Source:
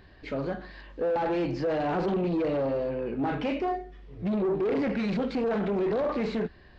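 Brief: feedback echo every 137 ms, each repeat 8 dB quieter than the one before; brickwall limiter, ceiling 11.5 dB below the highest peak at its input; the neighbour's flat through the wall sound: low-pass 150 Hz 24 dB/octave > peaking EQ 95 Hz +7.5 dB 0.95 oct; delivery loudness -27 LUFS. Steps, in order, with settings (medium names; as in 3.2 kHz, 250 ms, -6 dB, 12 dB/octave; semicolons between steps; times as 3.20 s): peak limiter -32 dBFS; low-pass 150 Hz 24 dB/octave; peaking EQ 95 Hz +7.5 dB 0.95 oct; feedback delay 137 ms, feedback 40%, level -8 dB; trim +22.5 dB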